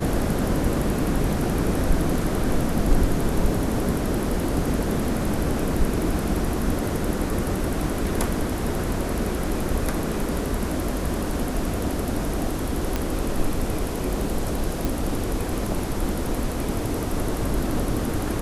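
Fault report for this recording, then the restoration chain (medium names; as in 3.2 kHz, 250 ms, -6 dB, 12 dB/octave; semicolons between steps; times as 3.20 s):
12.96 s: pop -10 dBFS
14.85 s: pop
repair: de-click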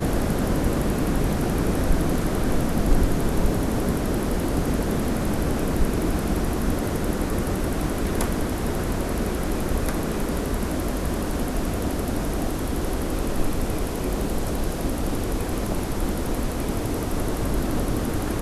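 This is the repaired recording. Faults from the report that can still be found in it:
nothing left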